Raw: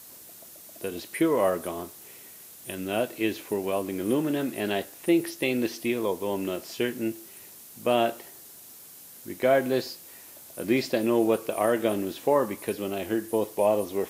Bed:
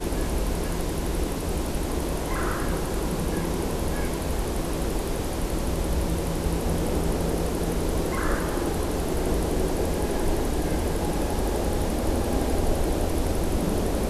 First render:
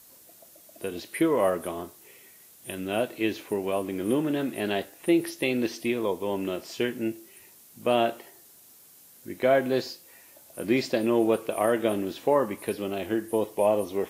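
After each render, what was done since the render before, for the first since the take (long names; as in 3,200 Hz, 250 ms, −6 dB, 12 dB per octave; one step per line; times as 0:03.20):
noise reduction from a noise print 6 dB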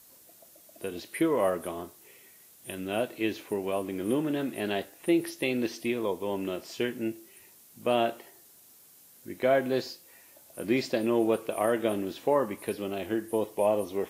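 level −2.5 dB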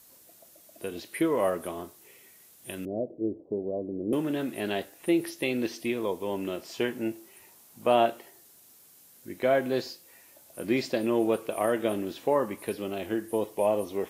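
0:02.85–0:04.13: Butterworth low-pass 620 Hz
0:06.74–0:08.06: parametric band 870 Hz +6.5 dB 1.2 octaves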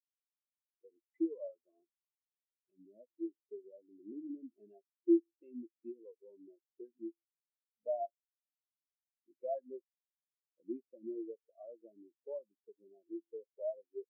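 downward compressor 2.5 to 1, threshold −37 dBFS, peak gain reduction 13 dB
every bin expanded away from the loudest bin 4 to 1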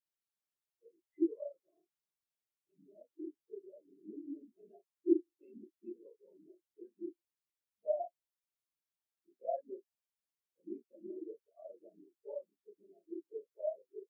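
random phases in long frames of 50 ms
notch comb filter 250 Hz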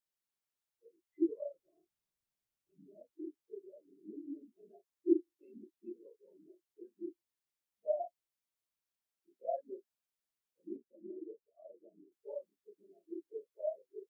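0:01.29–0:03.11: low-shelf EQ 210 Hz +11 dB
0:10.76–0:12.12: Bessel low-pass filter 540 Hz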